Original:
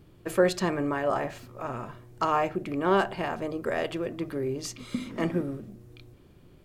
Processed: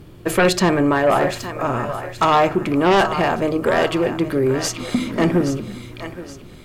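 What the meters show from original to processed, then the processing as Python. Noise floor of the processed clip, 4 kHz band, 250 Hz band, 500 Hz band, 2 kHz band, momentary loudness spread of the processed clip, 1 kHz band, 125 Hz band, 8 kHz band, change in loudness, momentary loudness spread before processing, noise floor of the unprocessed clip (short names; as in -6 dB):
-41 dBFS, +13.5 dB, +11.0 dB, +10.0 dB, +11.5 dB, 16 LU, +11.0 dB, +11.5 dB, +13.0 dB, +10.5 dB, 12 LU, -55 dBFS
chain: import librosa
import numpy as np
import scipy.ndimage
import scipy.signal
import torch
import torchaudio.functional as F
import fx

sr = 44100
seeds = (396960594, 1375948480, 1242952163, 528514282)

y = fx.echo_thinned(x, sr, ms=822, feedback_pct=38, hz=630.0, wet_db=-11)
y = fx.fold_sine(y, sr, drive_db=9, ceiling_db=-10.0)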